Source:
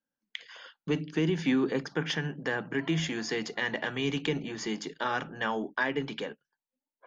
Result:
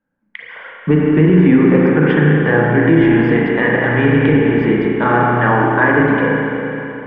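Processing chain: LPF 2100 Hz 24 dB/oct; low shelf 220 Hz +8 dB; reverb RT60 3.3 s, pre-delay 33 ms, DRR -3.5 dB; maximiser +14 dB; gain -1 dB

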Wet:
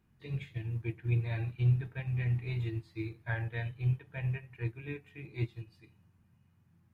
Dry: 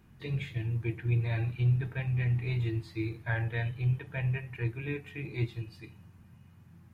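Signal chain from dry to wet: upward expander 1.5:1, over -45 dBFS

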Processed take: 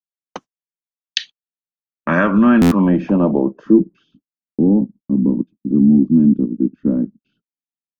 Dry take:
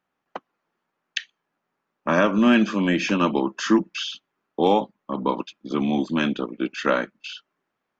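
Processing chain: low shelf 280 Hz +7 dB; gate -39 dBFS, range -40 dB; low-pass sweep 6500 Hz -> 260 Hz, 0.76–4.29; in parallel at +3 dB: limiter -11.5 dBFS, peak gain reduction 10.5 dB; on the sum: tone controls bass +5 dB, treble +14 dB; stuck buffer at 2.61, samples 512, times 8; gain -6 dB

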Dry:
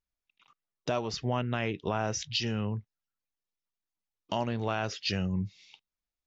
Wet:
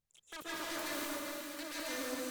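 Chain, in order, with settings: self-modulated delay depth 0.6 ms; LPF 6800 Hz 12 dB/oct; reverse; compressor 10:1, threshold -45 dBFS, peak gain reduction 19 dB; reverse; wide varispeed 2.72×; on a send: thin delay 0.392 s, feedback 73%, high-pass 1500 Hz, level -8 dB; on the sum: plate-style reverb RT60 2.6 s, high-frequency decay 0.95×, pre-delay 0.115 s, DRR -8.5 dB; gain +2 dB

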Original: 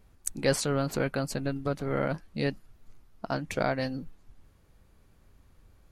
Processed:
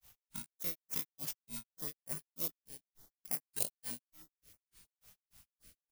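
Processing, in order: FFT order left unsorted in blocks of 32 samples; low shelf 98 Hz -8 dB; in parallel at 0 dB: negative-ratio compressor -41 dBFS, ratio -1; on the sum: pre-emphasis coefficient 0.8; companded quantiser 4-bit; on a send: echo 0.273 s -15 dB; on the sum: grains 0.172 s, grains 3.4/s, spray 21 ms, pitch spread up and down by 3 st; stepped notch 6.4 Hz 310–3600 Hz; gain -3 dB

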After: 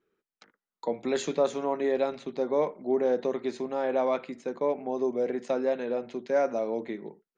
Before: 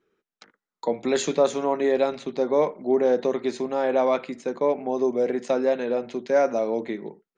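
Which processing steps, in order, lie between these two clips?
high shelf 5500 Hz -5 dB; gain -5 dB

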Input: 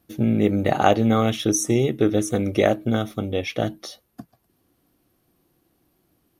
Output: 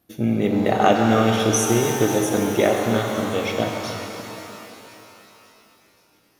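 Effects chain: low shelf 180 Hz -6 dB; thin delay 0.534 s, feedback 57%, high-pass 4900 Hz, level -14 dB; shimmer reverb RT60 3.3 s, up +12 st, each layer -8 dB, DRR 1.5 dB

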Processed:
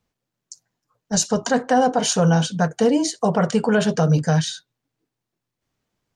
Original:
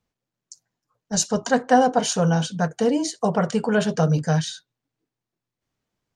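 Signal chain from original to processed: limiter -12 dBFS, peak gain reduction 7 dB; gain +3.5 dB

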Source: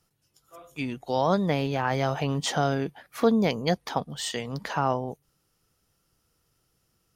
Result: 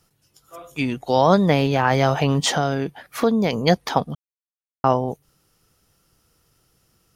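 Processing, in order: 2.54–3.53 compressor 1.5:1, threshold -33 dBFS, peak gain reduction 6.5 dB; 4.15–4.84 mute; gain +8 dB

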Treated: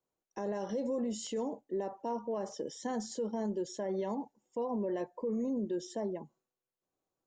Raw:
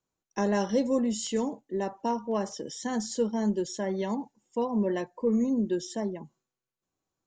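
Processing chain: bell 550 Hz +9.5 dB 2 oct; limiter -19.5 dBFS, peak gain reduction 11.5 dB; gain -8 dB

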